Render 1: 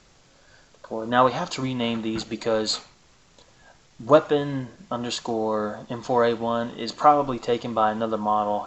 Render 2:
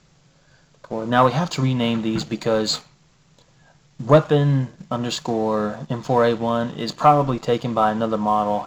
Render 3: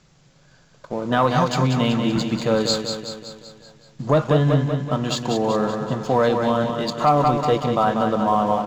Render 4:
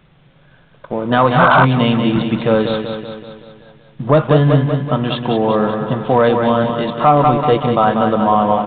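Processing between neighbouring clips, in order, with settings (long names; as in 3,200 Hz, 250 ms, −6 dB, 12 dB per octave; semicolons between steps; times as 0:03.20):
parametric band 150 Hz +14 dB 0.54 octaves; leveller curve on the samples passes 1; level −1 dB
repeating echo 190 ms, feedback 55%, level −6.5 dB; boost into a limiter +6.5 dB; level −6.5 dB
sound drawn into the spectrogram noise, 0:01.39–0:01.65, 570–1,600 Hz −16 dBFS; in parallel at −8.5 dB: wrap-around overflow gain 7.5 dB; on the sum: downsampling to 8,000 Hz; level +3 dB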